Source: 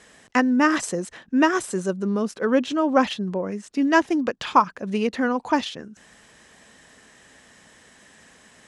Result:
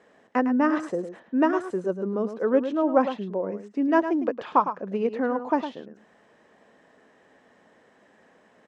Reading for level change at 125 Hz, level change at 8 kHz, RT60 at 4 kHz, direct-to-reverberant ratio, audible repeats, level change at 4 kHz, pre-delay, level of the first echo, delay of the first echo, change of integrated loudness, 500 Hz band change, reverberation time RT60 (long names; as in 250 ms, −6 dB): can't be measured, below −20 dB, no reverb audible, no reverb audible, 1, −14.5 dB, no reverb audible, −10.0 dB, 107 ms, −3.0 dB, 0.0 dB, no reverb audible